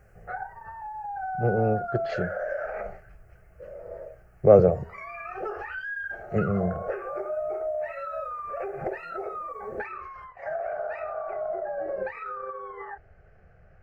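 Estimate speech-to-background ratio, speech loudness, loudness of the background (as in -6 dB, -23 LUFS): 10.5 dB, -23.5 LUFS, -34.0 LUFS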